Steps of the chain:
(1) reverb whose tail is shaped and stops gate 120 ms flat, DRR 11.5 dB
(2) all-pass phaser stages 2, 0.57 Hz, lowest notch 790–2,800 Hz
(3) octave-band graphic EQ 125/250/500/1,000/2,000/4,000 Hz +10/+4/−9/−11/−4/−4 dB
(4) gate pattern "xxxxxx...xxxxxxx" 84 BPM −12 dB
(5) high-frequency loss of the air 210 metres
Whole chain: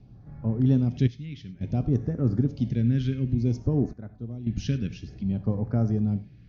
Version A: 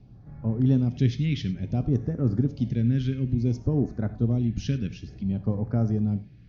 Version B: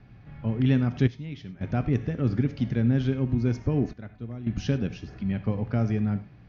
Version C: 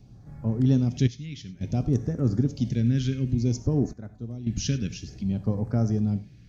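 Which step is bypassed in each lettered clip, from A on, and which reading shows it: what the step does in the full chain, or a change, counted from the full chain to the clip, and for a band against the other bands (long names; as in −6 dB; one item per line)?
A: 4, 4 kHz band +3.0 dB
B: 2, 2 kHz band +7.0 dB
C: 5, 4 kHz band +5.5 dB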